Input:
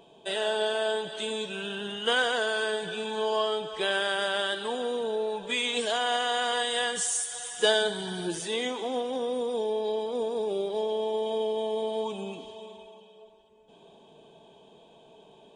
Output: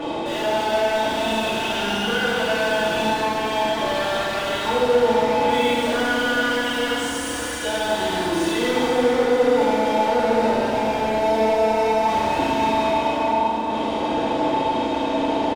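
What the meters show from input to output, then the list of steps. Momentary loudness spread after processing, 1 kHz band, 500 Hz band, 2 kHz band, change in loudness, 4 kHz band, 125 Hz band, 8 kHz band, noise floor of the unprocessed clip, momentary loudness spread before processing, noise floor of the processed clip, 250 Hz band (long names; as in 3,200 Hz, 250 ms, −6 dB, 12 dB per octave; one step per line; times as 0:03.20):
4 LU, +13.5 dB, +8.5 dB, +7.5 dB, +8.0 dB, +4.0 dB, +13.0 dB, +1.0 dB, −56 dBFS, 7 LU, −26 dBFS, +15.0 dB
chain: high-pass filter 80 Hz 24 dB per octave
low-shelf EQ 440 Hz +7.5 dB
comb filter 3.5 ms, depth 99%
reversed playback
downward compressor, threshold −32 dBFS, peak gain reduction 16 dB
reversed playback
mid-hump overdrive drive 36 dB, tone 1,500 Hz, clips at −22.5 dBFS
on a send: echo with shifted repeats 472 ms, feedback 61%, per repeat +34 Hz, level −12 dB
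on the sum: feedback delay network reverb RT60 2.3 s, low-frequency decay 1.5×, high-frequency decay 0.8×, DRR −8 dB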